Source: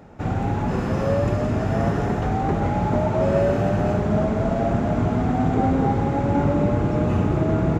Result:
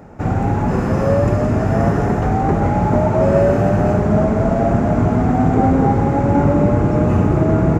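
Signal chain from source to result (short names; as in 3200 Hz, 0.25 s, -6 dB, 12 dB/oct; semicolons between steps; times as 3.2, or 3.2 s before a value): bell 3500 Hz -8.5 dB 0.88 oct; gain +6 dB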